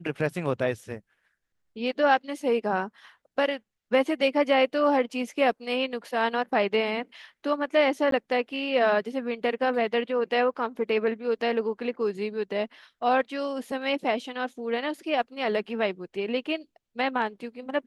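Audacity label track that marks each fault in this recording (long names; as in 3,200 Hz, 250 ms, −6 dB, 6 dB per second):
8.110000	8.120000	drop-out 13 ms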